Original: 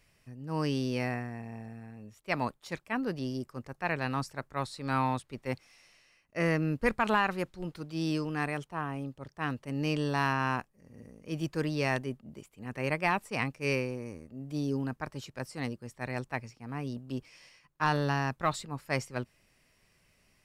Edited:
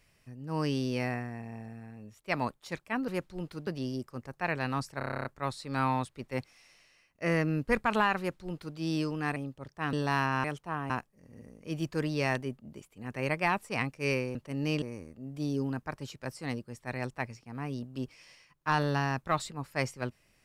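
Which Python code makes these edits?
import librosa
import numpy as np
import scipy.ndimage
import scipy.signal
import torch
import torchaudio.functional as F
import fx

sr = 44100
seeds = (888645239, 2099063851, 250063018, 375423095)

y = fx.edit(x, sr, fx.stutter(start_s=4.39, slice_s=0.03, count=10),
    fx.duplicate(start_s=7.32, length_s=0.59, to_s=3.08),
    fx.move(start_s=8.5, length_s=0.46, to_s=10.51),
    fx.move(start_s=9.53, length_s=0.47, to_s=13.96), tone=tone)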